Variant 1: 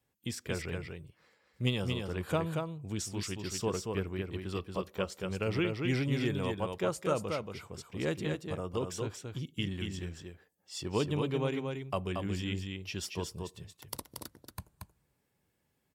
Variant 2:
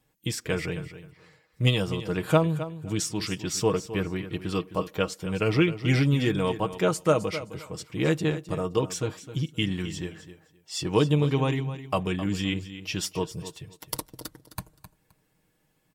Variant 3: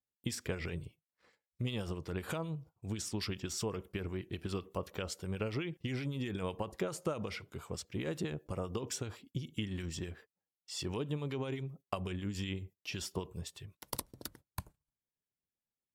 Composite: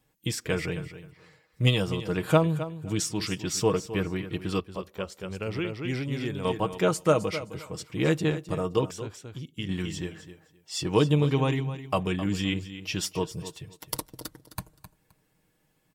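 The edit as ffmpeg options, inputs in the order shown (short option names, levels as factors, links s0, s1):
-filter_complex "[0:a]asplit=2[s0][s1];[1:a]asplit=3[s2][s3][s4];[s2]atrim=end=4.602[s5];[s0]atrim=start=4.598:end=6.452[s6];[s3]atrim=start=6.448:end=8.912[s7];[s1]atrim=start=8.908:end=9.692[s8];[s4]atrim=start=9.688[s9];[s5][s6]acrossfade=d=0.004:c1=hsin:c2=hsin[s10];[s10][s7]acrossfade=d=0.004:c1=hsin:c2=hsin[s11];[s11][s8]acrossfade=d=0.004:c1=hsin:c2=hsin[s12];[s12][s9]acrossfade=d=0.004:c1=hsin:c2=hsin"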